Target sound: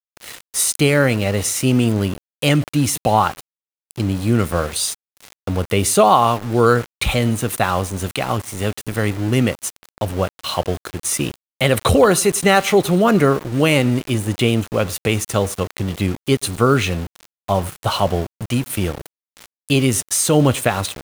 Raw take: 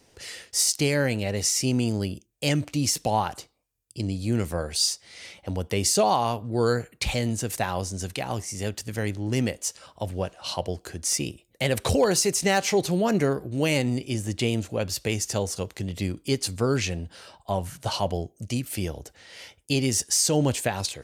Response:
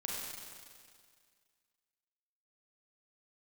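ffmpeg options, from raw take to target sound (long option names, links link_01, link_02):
-filter_complex "[0:a]superequalizer=10b=2.24:14b=0.282:15b=0.447,asplit=2[link_01][link_02];[link_02]adelay=100,lowpass=frequency=4000:poles=1,volume=-23.5dB,asplit=2[link_03][link_04];[link_04]adelay=100,lowpass=frequency=4000:poles=1,volume=0.16[link_05];[link_01][link_03][link_05]amix=inputs=3:normalize=0,aeval=exprs='val(0)*gte(abs(val(0)),0.0158)':channel_layout=same,volume=8.5dB"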